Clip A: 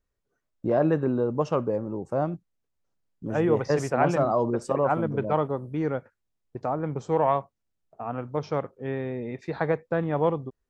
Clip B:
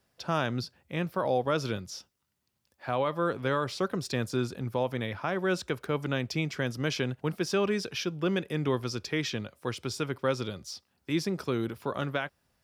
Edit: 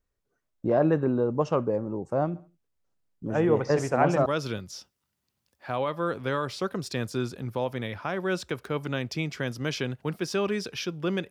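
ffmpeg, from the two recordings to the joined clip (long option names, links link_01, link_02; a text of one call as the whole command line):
ffmpeg -i cue0.wav -i cue1.wav -filter_complex "[0:a]asplit=3[link_01][link_02][link_03];[link_01]afade=type=out:start_time=2.34:duration=0.02[link_04];[link_02]aecho=1:1:69|138|207:0.119|0.0428|0.0154,afade=type=in:start_time=2.34:duration=0.02,afade=type=out:start_time=4.26:duration=0.02[link_05];[link_03]afade=type=in:start_time=4.26:duration=0.02[link_06];[link_04][link_05][link_06]amix=inputs=3:normalize=0,apad=whole_dur=11.3,atrim=end=11.3,atrim=end=4.262[link_07];[1:a]atrim=start=1.448:end=8.49[link_08];[link_07][link_08]acrossfade=duration=0.004:curve1=hsin:curve2=hsin" out.wav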